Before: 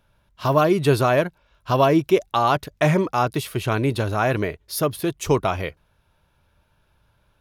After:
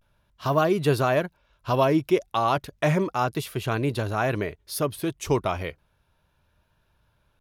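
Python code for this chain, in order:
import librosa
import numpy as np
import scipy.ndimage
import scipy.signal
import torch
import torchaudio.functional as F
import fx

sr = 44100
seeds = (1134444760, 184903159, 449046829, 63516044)

y = fx.vibrato(x, sr, rate_hz=0.34, depth_cents=50.0)
y = F.gain(torch.from_numpy(y), -4.0).numpy()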